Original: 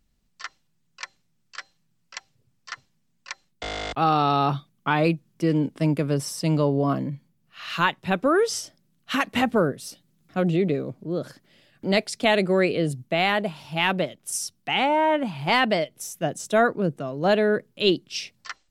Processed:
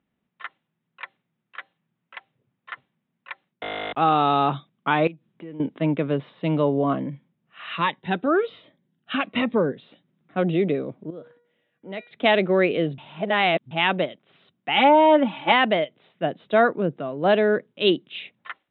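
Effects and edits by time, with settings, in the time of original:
5.07–5.60 s: compression 3:1, threshold -41 dBFS
7.75–9.78 s: Shepard-style phaser falling 1.2 Hz
11.10–12.11 s: feedback comb 480 Hz, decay 0.57 s, mix 80%
12.98–13.71 s: reverse
14.76–15.52 s: comb 3.5 ms, depth 96%
whole clip: Chebyshev low-pass 3.8 kHz, order 8; level-controlled noise filter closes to 2.4 kHz, open at -16.5 dBFS; high-pass 170 Hz 12 dB/octave; trim +2 dB

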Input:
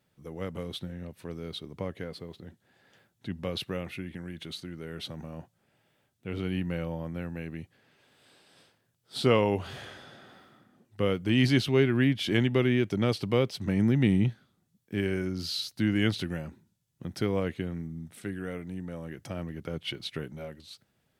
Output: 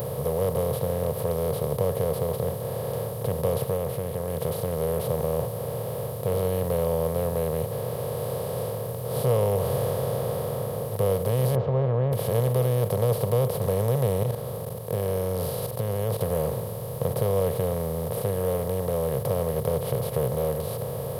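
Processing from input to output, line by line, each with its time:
3.59–4.45 s: dip -14 dB, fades 0.19 s
11.55–12.13 s: Bessel low-pass 830 Hz, order 8
14.23–16.21 s: level held to a coarse grid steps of 19 dB
whole clip: spectral levelling over time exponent 0.2; FFT filter 130 Hz 0 dB, 310 Hz -27 dB, 460 Hz -2 dB, 670 Hz 0 dB, 2.1 kHz -23 dB, 4.3 kHz -17 dB, 7.8 kHz -7 dB, 12 kHz +14 dB

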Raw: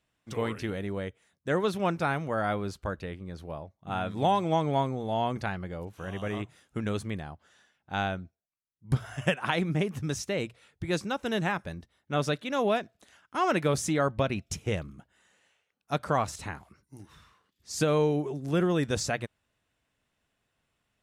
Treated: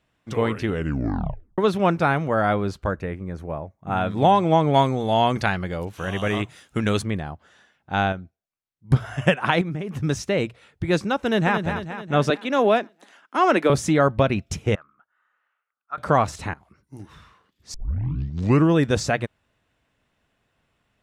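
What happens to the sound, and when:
0.67 s: tape stop 0.91 s
2.91–3.97 s: high-order bell 3.8 kHz -9 dB 1 oct
4.74–7.02 s: treble shelf 2.1 kHz +10.5 dB
8.12–8.91 s: feedback comb 780 Hz, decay 0.17 s, mix 50%
9.61–10.02 s: compression 8:1, threshold -33 dBFS
11.19–11.60 s: echo throw 220 ms, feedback 55%, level -7.5 dB
12.30–13.70 s: steep high-pass 210 Hz
14.75–15.98 s: band-pass filter 1.3 kHz, Q 6.1
16.54–17.00 s: fade in, from -18.5 dB
17.74 s: tape start 1.02 s
whole clip: treble shelf 4.7 kHz -9.5 dB; trim +8.5 dB

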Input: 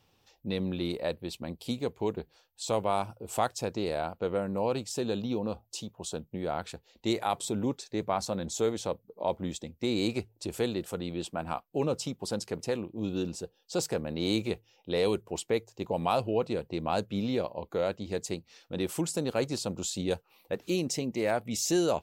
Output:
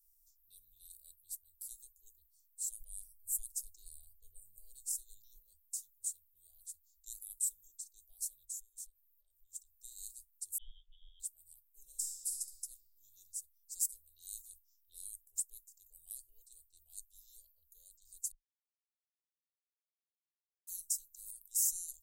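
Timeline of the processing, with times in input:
2.80–5.36 s: bass shelf 230 Hz +12 dB
8.44–9.72 s: compression 12:1, threshold -38 dBFS
10.58–11.20 s: frequency inversion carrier 3.5 kHz
11.84–12.29 s: reverb throw, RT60 2.4 s, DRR -2.5 dB
18.32–20.67 s: mute
whole clip: inverse Chebyshev band-stop 110–2400 Hz, stop band 70 dB; trim +11 dB

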